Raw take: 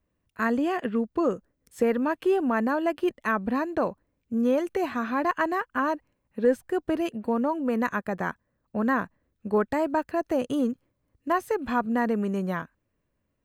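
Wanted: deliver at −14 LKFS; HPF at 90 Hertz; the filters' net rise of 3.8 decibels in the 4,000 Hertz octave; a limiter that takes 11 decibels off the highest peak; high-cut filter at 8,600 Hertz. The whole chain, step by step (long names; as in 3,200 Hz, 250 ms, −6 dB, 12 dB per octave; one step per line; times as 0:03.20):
high-pass filter 90 Hz
low-pass filter 8,600 Hz
parametric band 4,000 Hz +5.5 dB
level +18 dB
brickwall limiter −4.5 dBFS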